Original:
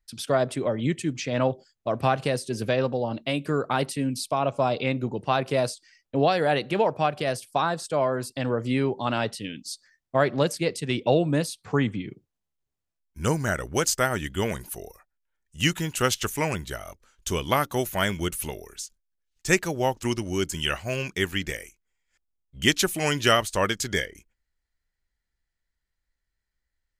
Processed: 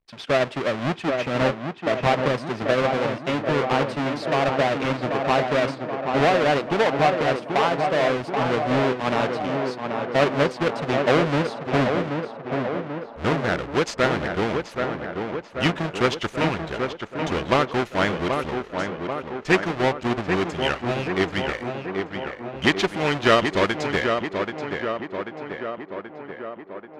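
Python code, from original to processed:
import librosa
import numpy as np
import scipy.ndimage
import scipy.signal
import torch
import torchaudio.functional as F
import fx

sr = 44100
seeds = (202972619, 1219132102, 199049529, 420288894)

y = fx.halfwave_hold(x, sr)
y = scipy.signal.sosfilt(scipy.signal.butter(2, 3100.0, 'lowpass', fs=sr, output='sos'), y)
y = fx.low_shelf(y, sr, hz=180.0, db=-10.5)
y = fx.echo_tape(y, sr, ms=784, feedback_pct=72, wet_db=-4, lp_hz=2300.0, drive_db=6.0, wow_cents=39)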